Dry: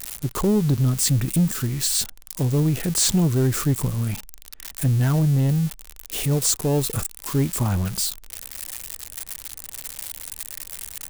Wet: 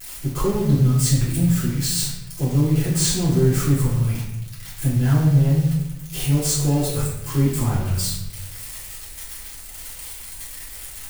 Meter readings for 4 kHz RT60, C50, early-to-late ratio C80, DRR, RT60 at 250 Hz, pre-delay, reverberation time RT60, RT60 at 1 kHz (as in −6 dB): 0.65 s, 2.5 dB, 5.0 dB, −10.5 dB, 1.3 s, 3 ms, 0.90 s, 0.85 s